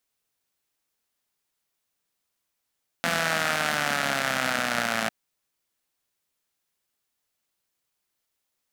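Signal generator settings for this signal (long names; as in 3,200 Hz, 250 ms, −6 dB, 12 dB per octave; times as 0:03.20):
pulse-train model of a four-cylinder engine, changing speed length 2.05 s, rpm 5,100, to 3,300, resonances 230/680/1,400 Hz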